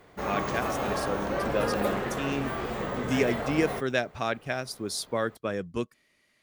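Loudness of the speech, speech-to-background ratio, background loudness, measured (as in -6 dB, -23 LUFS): -32.0 LUFS, -1.0 dB, -31.0 LUFS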